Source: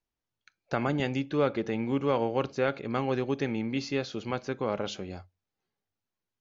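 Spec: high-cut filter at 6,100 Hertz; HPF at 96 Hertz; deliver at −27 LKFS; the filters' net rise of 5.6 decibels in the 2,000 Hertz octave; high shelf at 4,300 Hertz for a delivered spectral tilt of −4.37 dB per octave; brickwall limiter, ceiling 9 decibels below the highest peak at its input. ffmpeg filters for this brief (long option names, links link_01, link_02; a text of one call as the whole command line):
ffmpeg -i in.wav -af "highpass=96,lowpass=6100,equalizer=frequency=2000:width_type=o:gain=6.5,highshelf=frequency=4300:gain=4,volume=5.5dB,alimiter=limit=-13.5dB:level=0:latency=1" out.wav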